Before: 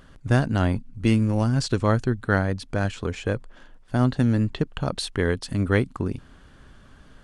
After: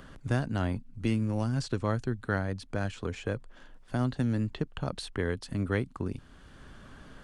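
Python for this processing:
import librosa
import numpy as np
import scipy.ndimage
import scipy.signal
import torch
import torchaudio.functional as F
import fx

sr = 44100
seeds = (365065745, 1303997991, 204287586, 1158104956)

y = fx.band_squash(x, sr, depth_pct=40)
y = y * librosa.db_to_amplitude(-8.0)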